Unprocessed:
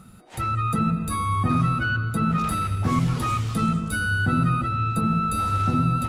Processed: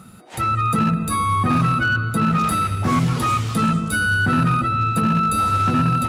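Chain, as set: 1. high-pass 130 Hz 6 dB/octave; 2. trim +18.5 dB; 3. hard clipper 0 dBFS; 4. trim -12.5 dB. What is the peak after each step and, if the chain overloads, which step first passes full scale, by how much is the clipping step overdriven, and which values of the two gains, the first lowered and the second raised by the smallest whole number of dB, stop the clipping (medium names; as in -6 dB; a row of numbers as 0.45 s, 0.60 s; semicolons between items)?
-11.5 dBFS, +7.0 dBFS, 0.0 dBFS, -12.5 dBFS; step 2, 7.0 dB; step 2 +11.5 dB, step 4 -5.5 dB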